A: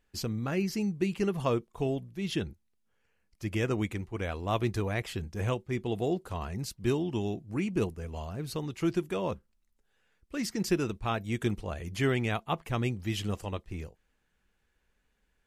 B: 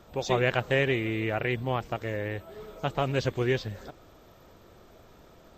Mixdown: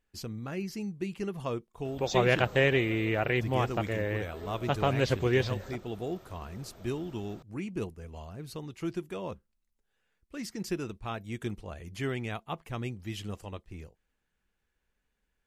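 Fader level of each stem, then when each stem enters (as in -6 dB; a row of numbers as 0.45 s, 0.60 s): -5.5 dB, +0.5 dB; 0.00 s, 1.85 s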